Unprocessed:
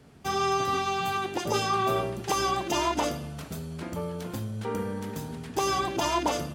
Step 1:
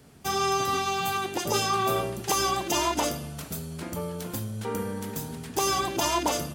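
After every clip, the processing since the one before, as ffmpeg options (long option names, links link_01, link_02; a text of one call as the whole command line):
ffmpeg -i in.wav -af "highshelf=frequency=6600:gain=12" out.wav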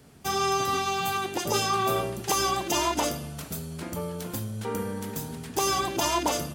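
ffmpeg -i in.wav -af anull out.wav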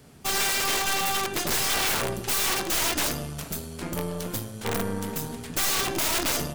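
ffmpeg -i in.wav -af "aeval=exprs='(mod(13.3*val(0)+1,2)-1)/13.3':channel_layout=same,bandreject=frequency=53.64:width_type=h:width=4,bandreject=frequency=107.28:width_type=h:width=4,bandreject=frequency=160.92:width_type=h:width=4,bandreject=frequency=214.56:width_type=h:width=4,bandreject=frequency=268.2:width_type=h:width=4,bandreject=frequency=321.84:width_type=h:width=4,bandreject=frequency=375.48:width_type=h:width=4,bandreject=frequency=429.12:width_type=h:width=4,bandreject=frequency=482.76:width_type=h:width=4,bandreject=frequency=536.4:width_type=h:width=4,bandreject=frequency=590.04:width_type=h:width=4,bandreject=frequency=643.68:width_type=h:width=4,bandreject=frequency=697.32:width_type=h:width=4,bandreject=frequency=750.96:width_type=h:width=4,bandreject=frequency=804.6:width_type=h:width=4,bandreject=frequency=858.24:width_type=h:width=4,bandreject=frequency=911.88:width_type=h:width=4,bandreject=frequency=965.52:width_type=h:width=4,bandreject=frequency=1019.16:width_type=h:width=4,bandreject=frequency=1072.8:width_type=h:width=4,bandreject=frequency=1126.44:width_type=h:width=4,bandreject=frequency=1180.08:width_type=h:width=4,bandreject=frequency=1233.72:width_type=h:width=4,bandreject=frequency=1287.36:width_type=h:width=4,bandreject=frequency=1341:width_type=h:width=4,bandreject=frequency=1394.64:width_type=h:width=4,bandreject=frequency=1448.28:width_type=h:width=4,bandreject=frequency=1501.92:width_type=h:width=4,bandreject=frequency=1555.56:width_type=h:width=4,bandreject=frequency=1609.2:width_type=h:width=4,bandreject=frequency=1662.84:width_type=h:width=4,bandreject=frequency=1716.48:width_type=h:width=4,bandreject=frequency=1770.12:width_type=h:width=4,bandreject=frequency=1823.76:width_type=h:width=4,bandreject=frequency=1877.4:width_type=h:width=4,bandreject=frequency=1931.04:width_type=h:width=4,aeval=exprs='0.112*(cos(1*acos(clip(val(0)/0.112,-1,1)))-cos(1*PI/2))+0.0112*(cos(6*acos(clip(val(0)/0.112,-1,1)))-cos(6*PI/2))':channel_layout=same,volume=2.5dB" out.wav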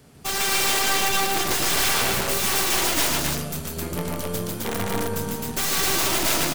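ffmpeg -i in.wav -af "aecho=1:1:148.7|262.4:0.794|0.891" out.wav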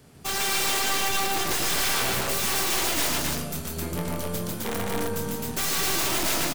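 ffmpeg -i in.wav -filter_complex "[0:a]asoftclip=type=tanh:threshold=-17dB,asplit=2[link_01][link_02];[link_02]adelay=24,volume=-11dB[link_03];[link_01][link_03]amix=inputs=2:normalize=0,volume=-1.5dB" out.wav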